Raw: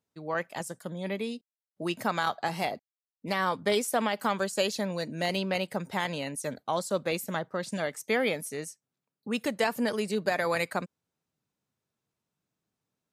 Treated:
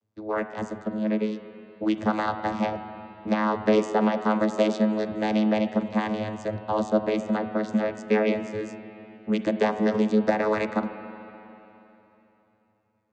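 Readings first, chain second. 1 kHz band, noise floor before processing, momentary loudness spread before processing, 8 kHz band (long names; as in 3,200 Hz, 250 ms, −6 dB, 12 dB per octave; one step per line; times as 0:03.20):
+3.0 dB, below −85 dBFS, 9 LU, below −10 dB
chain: channel vocoder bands 16, saw 107 Hz
spring reverb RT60 3.3 s, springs 36/40/48 ms, chirp 40 ms, DRR 8.5 dB
level +7 dB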